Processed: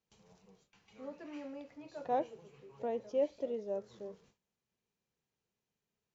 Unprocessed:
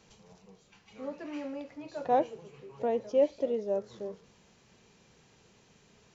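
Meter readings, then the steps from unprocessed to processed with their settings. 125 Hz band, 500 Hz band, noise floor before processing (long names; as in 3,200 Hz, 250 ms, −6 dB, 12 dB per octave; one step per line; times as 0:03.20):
−7.0 dB, −7.0 dB, −63 dBFS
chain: noise gate with hold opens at −49 dBFS
level −7 dB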